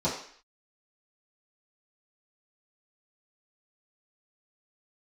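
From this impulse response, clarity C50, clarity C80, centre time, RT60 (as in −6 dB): 5.5 dB, 9.0 dB, 35 ms, 0.55 s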